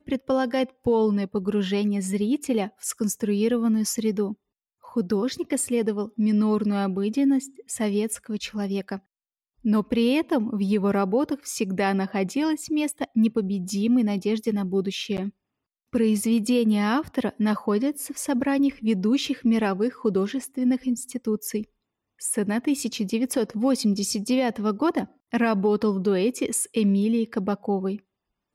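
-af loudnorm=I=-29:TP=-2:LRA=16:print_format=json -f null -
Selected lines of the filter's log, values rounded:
"input_i" : "-24.7",
"input_tp" : "-13.4",
"input_lra" : "2.1",
"input_thresh" : "-34.8",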